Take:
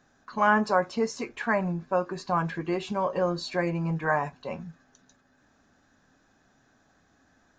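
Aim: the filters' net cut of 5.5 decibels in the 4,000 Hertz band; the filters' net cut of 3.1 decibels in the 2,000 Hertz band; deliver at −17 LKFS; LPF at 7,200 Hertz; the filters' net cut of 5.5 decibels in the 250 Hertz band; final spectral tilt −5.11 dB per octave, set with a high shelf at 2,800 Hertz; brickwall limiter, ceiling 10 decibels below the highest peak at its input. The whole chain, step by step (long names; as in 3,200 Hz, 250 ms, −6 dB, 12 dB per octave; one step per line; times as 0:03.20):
low-pass filter 7,200 Hz
parametric band 250 Hz −9 dB
parametric band 2,000 Hz −4 dB
high-shelf EQ 2,800 Hz +3.5 dB
parametric band 4,000 Hz −8.5 dB
level +16.5 dB
brickwall limiter −4 dBFS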